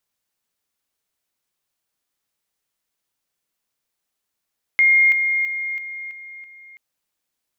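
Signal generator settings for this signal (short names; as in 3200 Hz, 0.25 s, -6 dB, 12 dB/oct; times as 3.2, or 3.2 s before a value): level ladder 2130 Hz -11 dBFS, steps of -6 dB, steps 6, 0.33 s 0.00 s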